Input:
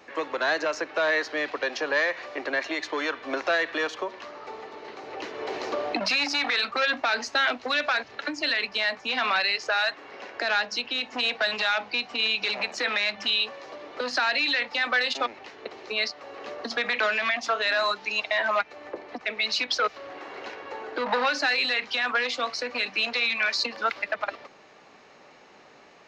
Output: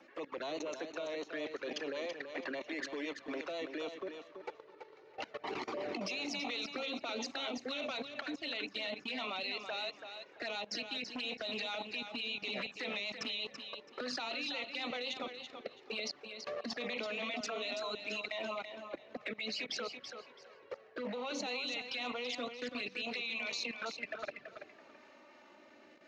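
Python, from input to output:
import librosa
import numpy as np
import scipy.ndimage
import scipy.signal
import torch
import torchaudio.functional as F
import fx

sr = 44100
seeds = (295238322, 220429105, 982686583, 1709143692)

y = scipy.signal.sosfilt(scipy.signal.butter(2, 140.0, 'highpass', fs=sr, output='sos'), x)
y = fx.bass_treble(y, sr, bass_db=4, treble_db=-5)
y = fx.env_flanger(y, sr, rest_ms=3.8, full_db=-24.0)
y = fx.dynamic_eq(y, sr, hz=7300.0, q=1.2, threshold_db=-49.0, ratio=4.0, max_db=4)
y = fx.rotary_switch(y, sr, hz=8.0, then_hz=0.6, switch_at_s=17.84)
y = fx.level_steps(y, sr, step_db=21)
y = fx.echo_feedback(y, sr, ms=332, feedback_pct=23, wet_db=-8.0)
y = y * librosa.db_to_amplitude(2.5)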